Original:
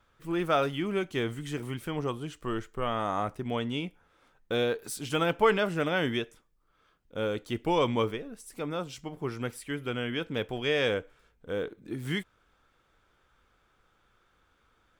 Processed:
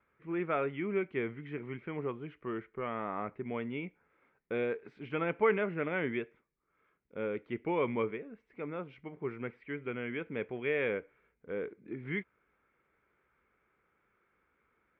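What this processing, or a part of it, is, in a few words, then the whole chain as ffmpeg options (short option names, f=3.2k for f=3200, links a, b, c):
bass cabinet: -af "highpass=70,equalizer=f=98:t=q:w=4:g=-7,equalizer=f=210:t=q:w=4:g=3,equalizer=f=400:t=q:w=4:g=6,equalizer=f=750:t=q:w=4:g=-3,equalizer=f=2.2k:t=q:w=4:g=10,lowpass=f=2.3k:w=0.5412,lowpass=f=2.3k:w=1.3066,volume=-7dB"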